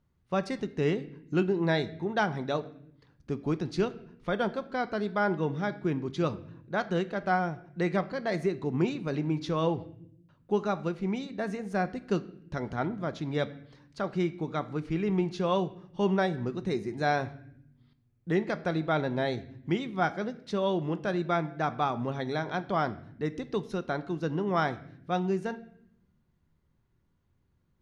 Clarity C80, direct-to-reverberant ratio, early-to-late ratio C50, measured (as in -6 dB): 19.0 dB, 11.0 dB, 17.0 dB